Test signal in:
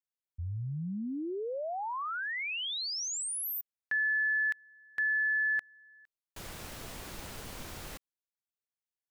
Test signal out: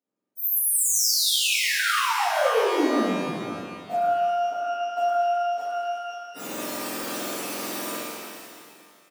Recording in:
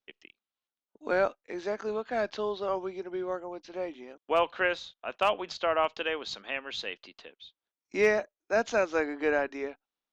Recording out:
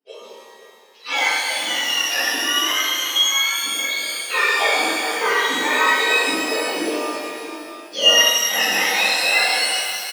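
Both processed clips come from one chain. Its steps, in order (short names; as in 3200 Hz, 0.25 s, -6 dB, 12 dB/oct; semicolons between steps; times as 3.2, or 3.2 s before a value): spectrum mirrored in octaves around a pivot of 1100 Hz; high shelf 2600 Hz +9.5 dB; in parallel at +1 dB: compressor, threshold -37 dBFS; on the sum: HPF 280 Hz 24 dB/oct; on a send: echo 0.517 s -14 dB; on the sum: shimmer reverb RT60 1.9 s, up +12 st, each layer -8 dB, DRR -11.5 dB; gain -4 dB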